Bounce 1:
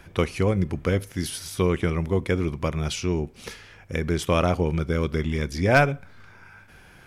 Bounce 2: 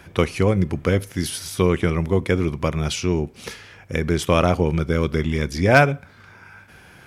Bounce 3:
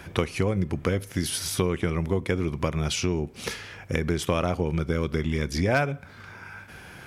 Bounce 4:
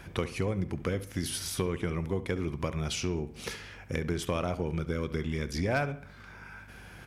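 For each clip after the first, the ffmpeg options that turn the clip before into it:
ffmpeg -i in.wav -af "highpass=61,volume=4dB" out.wav
ffmpeg -i in.wav -af "acompressor=threshold=-26dB:ratio=3,volume=2.5dB" out.wav
ffmpeg -i in.wav -filter_complex "[0:a]asoftclip=type=tanh:threshold=-9dB,aeval=exprs='val(0)+0.00447*(sin(2*PI*50*n/s)+sin(2*PI*2*50*n/s)/2+sin(2*PI*3*50*n/s)/3+sin(2*PI*4*50*n/s)/4+sin(2*PI*5*50*n/s)/5)':channel_layout=same,asplit=2[link_01][link_02];[link_02]adelay=69,lowpass=frequency=3800:poles=1,volume=-14.5dB,asplit=2[link_03][link_04];[link_04]adelay=69,lowpass=frequency=3800:poles=1,volume=0.42,asplit=2[link_05][link_06];[link_06]adelay=69,lowpass=frequency=3800:poles=1,volume=0.42,asplit=2[link_07][link_08];[link_08]adelay=69,lowpass=frequency=3800:poles=1,volume=0.42[link_09];[link_01][link_03][link_05][link_07][link_09]amix=inputs=5:normalize=0,volume=-5.5dB" out.wav

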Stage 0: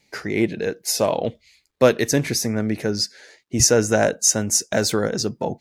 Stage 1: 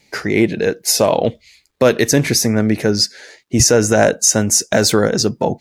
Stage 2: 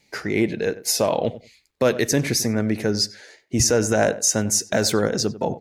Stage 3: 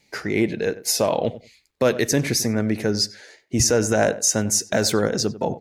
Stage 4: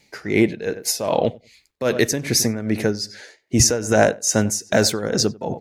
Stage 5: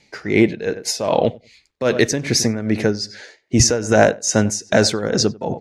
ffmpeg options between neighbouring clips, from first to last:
ffmpeg -i in.wav -af "alimiter=level_in=8.5dB:limit=-1dB:release=50:level=0:latency=1,volume=-1dB" out.wav
ffmpeg -i in.wav -filter_complex "[0:a]asplit=2[link_01][link_02];[link_02]adelay=95,lowpass=frequency=1800:poles=1,volume=-15dB,asplit=2[link_03][link_04];[link_04]adelay=95,lowpass=frequency=1800:poles=1,volume=0.18[link_05];[link_01][link_03][link_05]amix=inputs=3:normalize=0,volume=-6.5dB" out.wav
ffmpeg -i in.wav -af anull out.wav
ffmpeg -i in.wav -af "tremolo=f=2.5:d=0.74,volume=4.5dB" out.wav
ffmpeg -i in.wav -af "lowpass=6800,volume=2.5dB" out.wav

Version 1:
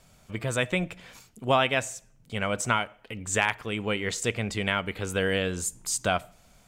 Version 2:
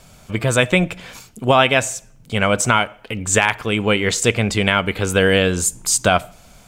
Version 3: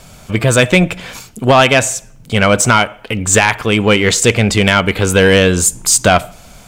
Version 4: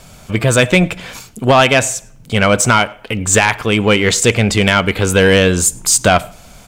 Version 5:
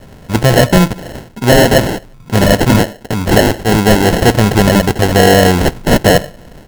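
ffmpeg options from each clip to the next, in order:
ffmpeg -i in.wav -af "bandreject=frequency=1900:width=21,alimiter=level_in=12.5dB:limit=-1dB:release=50:level=0:latency=1,volume=-1dB" out.wav
ffmpeg -i in.wav -af "asoftclip=type=tanh:threshold=-8.5dB,volume=7.5dB" out.wav
ffmpeg -i in.wav -filter_complex "[0:a]asplit=2[link_01][link_02];[link_02]adelay=105,volume=-28dB,highshelf=frequency=4000:gain=-2.36[link_03];[link_01][link_03]amix=inputs=2:normalize=0,volume=-1dB" out.wav
ffmpeg -i in.wav -af "acrusher=samples=37:mix=1:aa=0.000001,asoftclip=type=hard:threshold=-5.5dB,volume=3.5dB" out.wav

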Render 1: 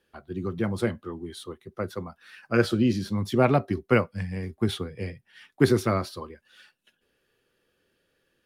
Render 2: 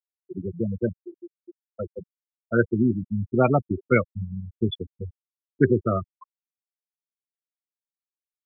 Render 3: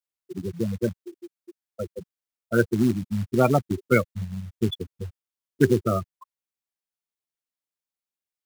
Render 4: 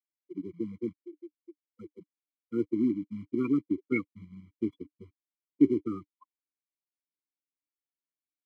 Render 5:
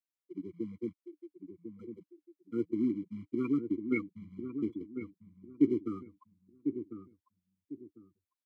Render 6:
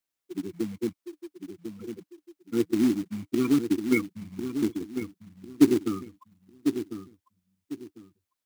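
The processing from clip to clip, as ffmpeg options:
ffmpeg -i in.wav -af "afftfilt=real='re*gte(hypot(re,im),0.158)':imag='im*gte(hypot(re,im),0.158)':win_size=1024:overlap=0.75,equalizer=frequency=4100:width_type=o:width=1.6:gain=10.5,volume=1dB" out.wav
ffmpeg -i in.wav -af "acrusher=bits=5:mode=log:mix=0:aa=0.000001" out.wav
ffmpeg -i in.wav -filter_complex "[0:a]asplit=3[link_01][link_02][link_03];[link_01]bandpass=frequency=300:width_type=q:width=8,volume=0dB[link_04];[link_02]bandpass=frequency=870:width_type=q:width=8,volume=-6dB[link_05];[link_03]bandpass=frequency=2240:width_type=q:width=8,volume=-9dB[link_06];[link_04][link_05][link_06]amix=inputs=3:normalize=0,afftfilt=real='re*eq(mod(floor(b*sr/1024/480),2),0)':imag='im*eq(mod(floor(b*sr/1024/480),2),0)':win_size=1024:overlap=0.75,volume=4.5dB" out.wav
ffmpeg -i in.wav -filter_complex "[0:a]asplit=2[link_01][link_02];[link_02]adelay=1049,lowpass=frequency=840:poles=1,volume=-7.5dB,asplit=2[link_03][link_04];[link_04]adelay=1049,lowpass=frequency=840:poles=1,volume=0.28,asplit=2[link_05][link_06];[link_06]adelay=1049,lowpass=frequency=840:poles=1,volume=0.28[link_07];[link_01][link_03][link_05][link_07]amix=inputs=4:normalize=0,volume=-3.5dB" out.wav
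ffmpeg -i in.wav -af "acrusher=bits=4:mode=log:mix=0:aa=0.000001,volume=7.5dB" out.wav

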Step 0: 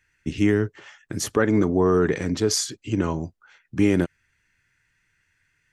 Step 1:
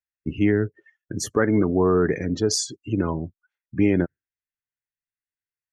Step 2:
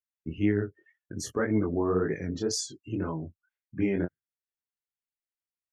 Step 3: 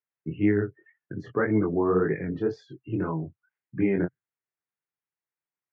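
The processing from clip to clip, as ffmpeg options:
ffmpeg -i in.wav -af "afftdn=noise_reduction=34:noise_floor=-34" out.wav
ffmpeg -i in.wav -af "flanger=delay=18.5:depth=6.7:speed=1.9,volume=-4.5dB" out.wav
ffmpeg -i in.wav -af "highpass=frequency=110:width=0.5412,highpass=frequency=110:width=1.3066,equalizer=frequency=130:width_type=q:width=4:gain=5,equalizer=frequency=240:width_type=q:width=4:gain=-6,equalizer=frequency=590:width_type=q:width=4:gain=-4,lowpass=frequency=2300:width=0.5412,lowpass=frequency=2300:width=1.3066,volume=4.5dB" out.wav

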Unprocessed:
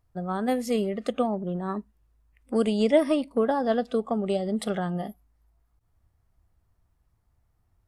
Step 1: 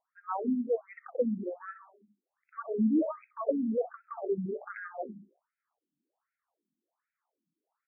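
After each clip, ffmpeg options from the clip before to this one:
ffmpeg -i in.wav -filter_complex "[0:a]bandreject=frequency=50:width_type=h:width=6,bandreject=frequency=100:width_type=h:width=6,bandreject=frequency=150:width_type=h:width=6,bandreject=frequency=200:width_type=h:width=6,asplit=2[link_01][link_02];[link_02]adelay=64,lowpass=frequency=1500:poles=1,volume=-12.5dB,asplit=2[link_03][link_04];[link_04]adelay=64,lowpass=frequency=1500:poles=1,volume=0.53,asplit=2[link_05][link_06];[link_06]adelay=64,lowpass=frequency=1500:poles=1,volume=0.53,asplit=2[link_07][link_08];[link_08]adelay=64,lowpass=frequency=1500:poles=1,volume=0.53,asplit=2[link_09][link_10];[link_10]adelay=64,lowpass=frequency=1500:poles=1,volume=0.53[link_11];[link_01][link_03][link_05][link_07][link_09][link_11]amix=inputs=6:normalize=0,afftfilt=real='re*between(b*sr/1024,230*pow(1900/230,0.5+0.5*sin(2*PI*1.3*pts/sr))/1.41,230*pow(1900/230,0.5+0.5*sin(2*PI*1.3*pts/sr))*1.41)':imag='im*between(b*sr/1024,230*pow(1900/230,0.5+0.5*sin(2*PI*1.3*pts/sr))/1.41,230*pow(1900/230,0.5+0.5*sin(2*PI*1.3*pts/sr))*1.41)':win_size=1024:overlap=0.75" out.wav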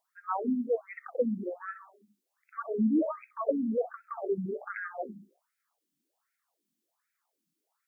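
ffmpeg -i in.wav -af "highshelf=frequency=2100:gain=11.5" out.wav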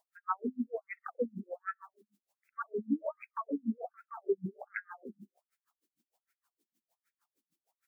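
ffmpeg -i in.wav -filter_complex "[0:a]asplit=2[link_01][link_02];[link_02]acompressor=threshold=-39dB:ratio=6,volume=-1dB[link_03];[link_01][link_03]amix=inputs=2:normalize=0,aeval=exprs='val(0)*pow(10,-38*(0.5-0.5*cos(2*PI*6.5*n/s))/20)':channel_layout=same" out.wav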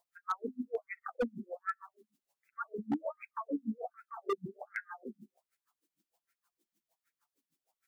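ffmpeg -i in.wav -af "flanger=delay=5.7:depth=2.5:regen=-19:speed=0.31:shape=sinusoidal,aeval=exprs='0.0376*(abs(mod(val(0)/0.0376+3,4)-2)-1)':channel_layout=same,volume=4dB" out.wav

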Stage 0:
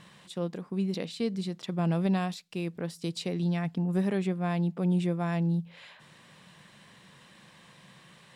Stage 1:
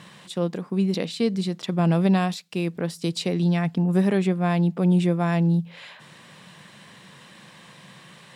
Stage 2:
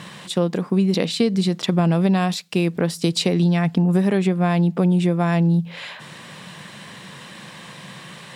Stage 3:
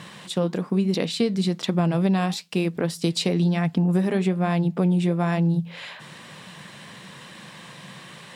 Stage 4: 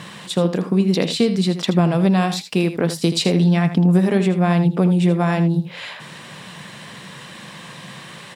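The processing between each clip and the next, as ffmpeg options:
ffmpeg -i in.wav -af "highpass=94,volume=7.5dB" out.wav
ffmpeg -i in.wav -af "acompressor=threshold=-23dB:ratio=6,volume=8.5dB" out.wav
ffmpeg -i in.wav -af "flanger=delay=1.7:depth=6:regen=-80:speed=1.1:shape=triangular,volume=1dB" out.wav
ffmpeg -i in.wav -af "aecho=1:1:80:0.282,volume=5dB" out.wav

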